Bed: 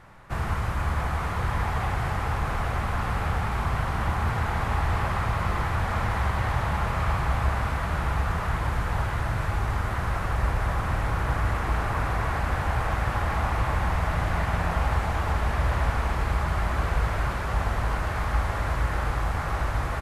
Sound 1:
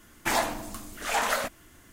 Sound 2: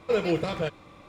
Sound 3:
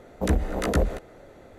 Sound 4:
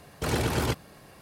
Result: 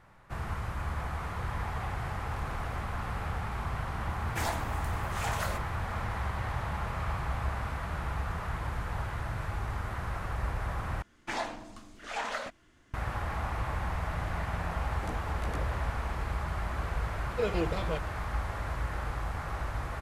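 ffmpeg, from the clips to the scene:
ffmpeg -i bed.wav -i cue0.wav -i cue1.wav -i cue2.wav -i cue3.wav -filter_complex "[1:a]asplit=2[link_01][link_02];[0:a]volume=-8dB[link_03];[4:a]acompressor=threshold=-39dB:ratio=6:attack=3.2:release=140:knee=1:detection=peak[link_04];[link_02]lowpass=5200[link_05];[link_03]asplit=2[link_06][link_07];[link_06]atrim=end=11.024[link_08];[link_05]atrim=end=1.92,asetpts=PTS-STARTPTS,volume=-8dB[link_09];[link_07]atrim=start=12.936[link_10];[link_04]atrim=end=1.21,asetpts=PTS-STARTPTS,volume=-12dB,afade=type=in:duration=0.004:curve=hsin,afade=type=out:start_time=1.206:duration=0.004:curve=hsin,adelay=2100[link_11];[link_01]atrim=end=1.92,asetpts=PTS-STARTPTS,volume=-9dB,afade=type=in:duration=0.004:curve=hsin,afade=type=out:start_time=1.916:duration=0.004:curve=hsin,adelay=4100[link_12];[3:a]atrim=end=1.58,asetpts=PTS-STARTPTS,volume=-17dB,afade=type=in:duration=0.004:curve=hsin,afade=type=out:start_time=1.576:duration=0.004:curve=hsin,adelay=14800[link_13];[2:a]atrim=end=1.08,asetpts=PTS-STARTPTS,volume=-6dB,afade=type=in:duration=0.004:curve=hsin,afade=type=out:start_time=1.076:duration=0.004:curve=hsin,adelay=17290[link_14];[link_08][link_09]acrossfade=duration=0.004:curve1=hsin:curve2=hsin[link_15];[link_15][link_10]acrossfade=duration=0.004:curve1=hsin:curve2=hsin[link_16];[link_16][link_11][link_12][link_13][link_14]amix=inputs=5:normalize=0" out.wav

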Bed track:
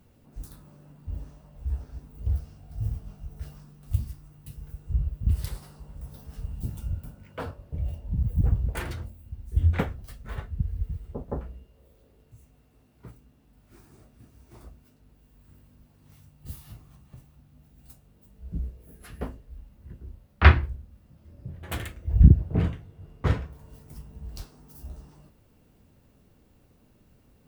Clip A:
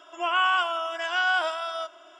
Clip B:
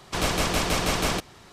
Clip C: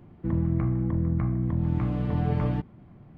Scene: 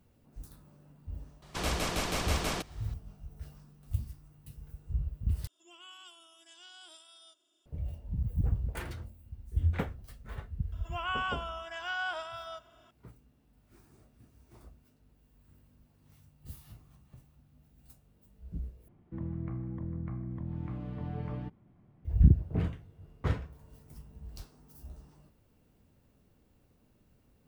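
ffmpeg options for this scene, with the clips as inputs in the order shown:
ffmpeg -i bed.wav -i cue0.wav -i cue1.wav -i cue2.wav -filter_complex "[1:a]asplit=2[link_01][link_02];[0:a]volume=-6.5dB[link_03];[link_01]firequalizer=gain_entry='entry(210,0);entry(660,-22);entry(1000,-21);entry(1500,-22);entry(2500,-14);entry(3600,-1);entry(5600,-3);entry(8900,11)':delay=0.05:min_phase=1[link_04];[link_03]asplit=3[link_05][link_06][link_07];[link_05]atrim=end=5.474[link_08];[link_04]atrim=end=2.19,asetpts=PTS-STARTPTS,volume=-13dB[link_09];[link_06]atrim=start=7.656:end=18.884[link_10];[3:a]atrim=end=3.17,asetpts=PTS-STARTPTS,volume=-12dB[link_11];[link_07]atrim=start=22.046[link_12];[2:a]atrim=end=1.52,asetpts=PTS-STARTPTS,volume=-8dB,afade=type=in:duration=0.004:curve=hsin,afade=type=out:start_time=1.516:duration=0.004:curve=hsin,adelay=1420[link_13];[link_02]atrim=end=2.19,asetpts=PTS-STARTPTS,volume=-11dB,afade=type=in:duration=0.004:curve=hsin,afade=type=out:start_time=2.186:duration=0.004:curve=hsin,adelay=10720[link_14];[link_08][link_09]acrossfade=duration=0.004:curve1=hsin:curve2=hsin[link_15];[link_15][link_10]acrossfade=duration=0.004:curve1=hsin:curve2=hsin[link_16];[link_16][link_11]acrossfade=duration=0.004:curve1=hsin:curve2=hsin[link_17];[link_17][link_12]acrossfade=duration=0.004:curve1=hsin:curve2=hsin[link_18];[link_18][link_13][link_14]amix=inputs=3:normalize=0" out.wav

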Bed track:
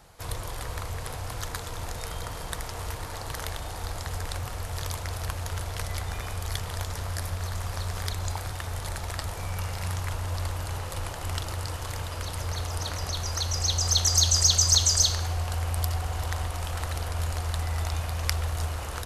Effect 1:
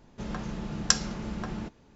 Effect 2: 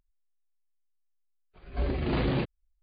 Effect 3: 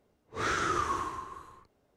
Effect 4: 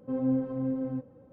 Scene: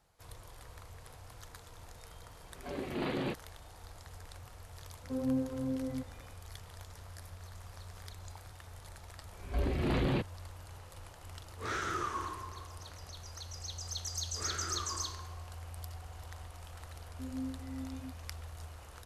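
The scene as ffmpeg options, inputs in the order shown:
ffmpeg -i bed.wav -i cue0.wav -i cue1.wav -i cue2.wav -i cue3.wav -filter_complex "[2:a]asplit=2[link_01][link_02];[4:a]asplit=2[link_03][link_04];[3:a]asplit=2[link_05][link_06];[0:a]volume=-17dB[link_07];[link_01]highpass=190[link_08];[link_02]asoftclip=type=tanh:threshold=-21.5dB[link_09];[link_05]acontrast=50[link_10];[link_04]asuperpass=centerf=250:order=4:qfactor=1.1[link_11];[link_08]atrim=end=2.82,asetpts=PTS-STARTPTS,volume=-5dB,afade=type=in:duration=0.004:curve=hsin,afade=type=out:start_time=2.816:duration=0.004:curve=hsin,adelay=890[link_12];[link_03]atrim=end=1.32,asetpts=PTS-STARTPTS,volume=-5dB,afade=type=in:duration=0.004:curve=hsin,afade=type=out:start_time=1.316:duration=0.004:curve=hsin,adelay=5020[link_13];[link_09]atrim=end=2.82,asetpts=PTS-STARTPTS,volume=-1.5dB,afade=type=in:duration=0.004:curve=hsin,afade=type=out:start_time=2.816:duration=0.004:curve=hsin,adelay=7770[link_14];[link_10]atrim=end=1.96,asetpts=PTS-STARTPTS,volume=-12dB,afade=type=in:duration=0.004:curve=hsin,afade=type=out:start_time=1.956:duration=0.004:curve=hsin,adelay=11250[link_15];[link_06]atrim=end=1.96,asetpts=PTS-STARTPTS,volume=-12dB,afade=type=in:duration=0.004:curve=hsin,afade=type=out:start_time=1.956:duration=0.004:curve=hsin,adelay=14010[link_16];[link_11]atrim=end=1.32,asetpts=PTS-STARTPTS,volume=-12dB,afade=type=in:duration=0.004:curve=hsin,afade=type=out:start_time=1.316:duration=0.004:curve=hsin,adelay=17110[link_17];[link_07][link_12][link_13][link_14][link_15][link_16][link_17]amix=inputs=7:normalize=0" out.wav

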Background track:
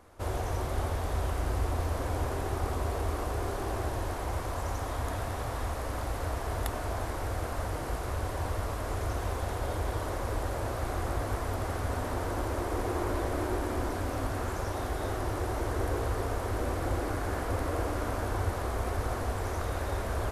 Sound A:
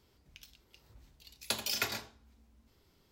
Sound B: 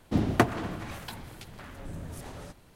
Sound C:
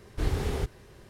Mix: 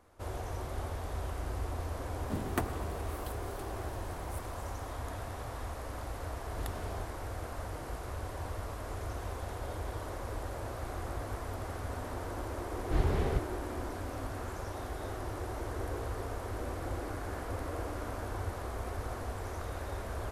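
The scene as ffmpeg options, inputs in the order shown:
ffmpeg -i bed.wav -i cue0.wav -i cue1.wav -i cue2.wav -filter_complex "[3:a]asplit=2[link_01][link_02];[0:a]volume=-6.5dB[link_03];[2:a]aexciter=amount=4.1:drive=4:freq=7800[link_04];[link_02]aemphasis=mode=reproduction:type=75kf[link_05];[link_04]atrim=end=2.75,asetpts=PTS-STARTPTS,volume=-11.5dB,afade=type=in:duration=0.004:curve=hsin,afade=type=out:start_time=2.746:duration=0.004:curve=hsin,adelay=2180[link_06];[link_01]atrim=end=1.09,asetpts=PTS-STARTPTS,volume=-15dB,afade=type=in:duration=0.004:curve=hsin,afade=type=out:start_time=1.086:duration=0.004:curve=hsin,adelay=6370[link_07];[link_05]atrim=end=1.09,asetpts=PTS-STARTPTS,volume=-1dB,afade=type=in:duration=0.004:curve=hsin,afade=type=out:start_time=1.086:duration=0.004:curve=hsin,adelay=12730[link_08];[link_03][link_06][link_07][link_08]amix=inputs=4:normalize=0" out.wav

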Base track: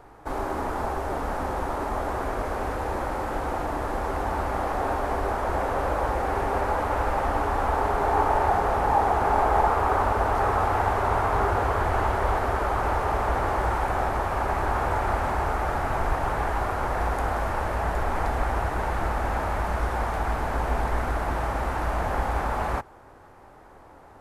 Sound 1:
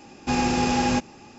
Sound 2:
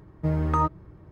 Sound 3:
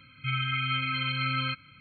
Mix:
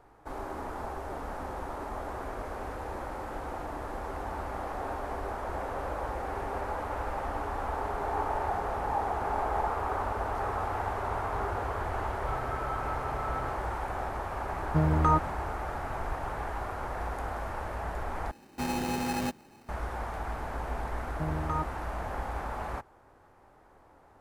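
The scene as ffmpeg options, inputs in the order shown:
ffmpeg -i bed.wav -i cue0.wav -i cue1.wav -i cue2.wav -filter_complex "[2:a]asplit=2[link_01][link_02];[0:a]volume=-9dB[link_03];[3:a]highshelf=frequency=2000:width_type=q:width=3:gain=-13.5[link_04];[1:a]acrusher=samples=13:mix=1:aa=0.000001[link_05];[link_03]asplit=2[link_06][link_07];[link_06]atrim=end=18.314[link_08];[link_05]atrim=end=1.38,asetpts=PTS-STARTPTS,volume=-9dB[link_09];[link_07]atrim=start=19.686[link_10];[link_04]atrim=end=1.8,asetpts=PTS-STARTPTS,volume=-13dB,afade=type=in:duration=0.004:curve=hsin,afade=type=out:start_time=1.796:duration=0.004:curve=hsin,adelay=11990[link_11];[link_01]atrim=end=1.11,asetpts=PTS-STARTPTS,volume=-0.5dB,afade=type=in:duration=0.004:curve=hsin,afade=type=out:start_time=1.106:duration=0.004:curve=hsin,adelay=14510[link_12];[link_02]atrim=end=1.11,asetpts=PTS-STARTPTS,volume=-9dB,afade=type=in:duration=0.004:curve=hsin,afade=type=out:start_time=1.106:duration=0.004:curve=hsin,adelay=20960[link_13];[link_08][link_09]acrossfade=duration=0.004:curve1=hsin:curve2=hsin[link_14];[link_14][link_10]acrossfade=duration=0.004:curve1=hsin:curve2=hsin[link_15];[link_15][link_11][link_12][link_13]amix=inputs=4:normalize=0" out.wav

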